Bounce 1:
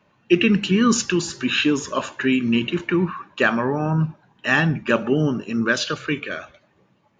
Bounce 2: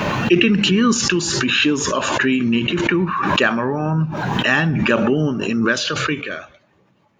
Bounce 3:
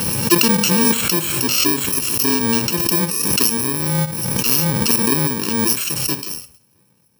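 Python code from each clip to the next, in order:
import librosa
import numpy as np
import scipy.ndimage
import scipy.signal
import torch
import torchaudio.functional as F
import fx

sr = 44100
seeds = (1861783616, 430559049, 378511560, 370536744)

y1 = fx.pre_swell(x, sr, db_per_s=25.0)
y1 = y1 * librosa.db_to_amplitude(1.0)
y2 = fx.bit_reversed(y1, sr, seeds[0], block=64)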